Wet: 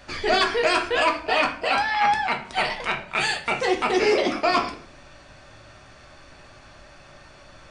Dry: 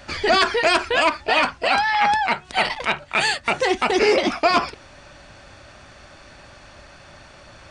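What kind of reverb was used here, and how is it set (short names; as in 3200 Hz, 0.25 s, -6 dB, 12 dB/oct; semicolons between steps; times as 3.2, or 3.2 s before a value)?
shoebox room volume 54 m³, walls mixed, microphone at 0.47 m; gain -5 dB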